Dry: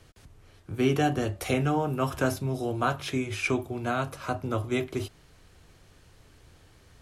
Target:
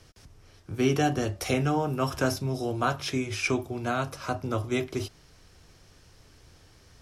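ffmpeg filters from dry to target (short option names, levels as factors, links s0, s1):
-af "equalizer=f=5400:t=o:w=0.39:g=9"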